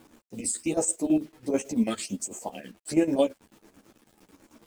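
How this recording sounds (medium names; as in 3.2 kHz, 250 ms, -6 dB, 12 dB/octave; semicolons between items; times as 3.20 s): phasing stages 8, 1.4 Hz, lowest notch 780–4300 Hz; a quantiser's noise floor 10-bit, dither none; chopped level 9.1 Hz, depth 65%, duty 60%; a shimmering, thickened sound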